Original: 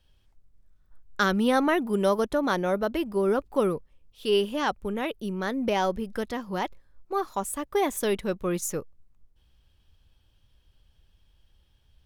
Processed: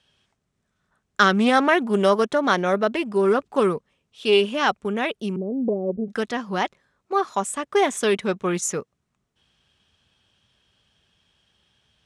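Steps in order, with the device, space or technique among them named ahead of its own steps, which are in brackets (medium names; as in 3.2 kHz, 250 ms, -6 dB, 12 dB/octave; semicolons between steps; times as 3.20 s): 5.36–6.08 s: steep low-pass 570 Hz 48 dB/octave; full-range speaker at full volume (loudspeaker Doppler distortion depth 0.16 ms; cabinet simulation 200–8600 Hz, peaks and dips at 310 Hz -8 dB, 520 Hz -6 dB, 890 Hz -4 dB, 4.6 kHz -4 dB); trim +8.5 dB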